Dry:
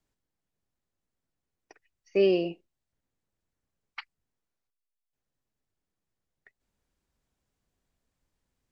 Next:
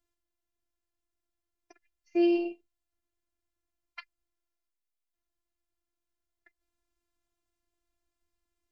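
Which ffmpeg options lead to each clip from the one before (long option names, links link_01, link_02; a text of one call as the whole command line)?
ffmpeg -i in.wav -af "afftfilt=real='hypot(re,im)*cos(PI*b)':imag='0':win_size=512:overlap=0.75" out.wav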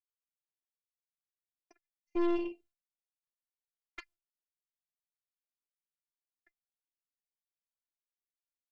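ffmpeg -i in.wav -af "agate=range=-33dB:threshold=-56dB:ratio=3:detection=peak,dynaudnorm=framelen=850:gausssize=5:maxgain=6dB,aeval=exprs='(tanh(14.1*val(0)+0.7)-tanh(0.7))/14.1':channel_layout=same,volume=-3.5dB" out.wav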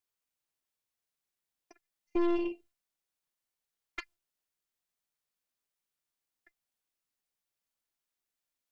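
ffmpeg -i in.wav -af "acompressor=threshold=-35dB:ratio=2,volume=6.5dB" out.wav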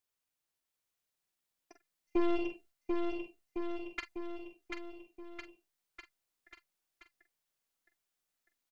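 ffmpeg -i in.wav -filter_complex "[0:a]asplit=2[link_01][link_02];[link_02]adelay=45,volume=-10.5dB[link_03];[link_01][link_03]amix=inputs=2:normalize=0,aecho=1:1:740|1406|2005|2545|3030:0.631|0.398|0.251|0.158|0.1" out.wav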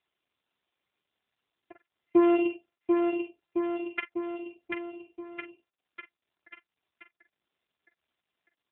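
ffmpeg -i in.wav -af "equalizer=frequency=560:width_type=o:width=2.5:gain=2.5,afftfilt=real='hypot(re,im)*cos(PI*b)':imag='0':win_size=512:overlap=0.75,volume=8.5dB" -ar 8000 -c:a libopencore_amrnb -b:a 7400 out.amr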